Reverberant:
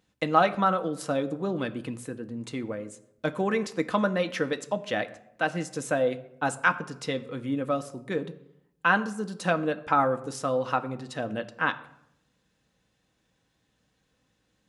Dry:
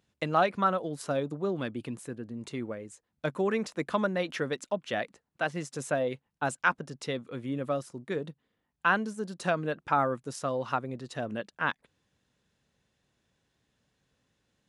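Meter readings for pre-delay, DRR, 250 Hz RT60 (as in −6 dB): 4 ms, 7.5 dB, 0.95 s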